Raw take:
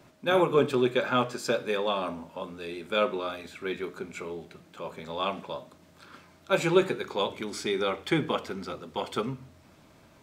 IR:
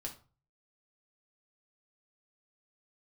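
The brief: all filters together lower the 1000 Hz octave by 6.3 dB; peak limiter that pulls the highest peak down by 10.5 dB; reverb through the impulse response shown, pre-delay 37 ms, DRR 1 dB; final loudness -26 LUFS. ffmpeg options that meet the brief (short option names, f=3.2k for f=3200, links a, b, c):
-filter_complex "[0:a]equalizer=f=1k:t=o:g=-8.5,alimiter=limit=-20.5dB:level=0:latency=1,asplit=2[a][b];[1:a]atrim=start_sample=2205,adelay=37[c];[b][c]afir=irnorm=-1:irlink=0,volume=1dB[d];[a][d]amix=inputs=2:normalize=0,volume=5dB"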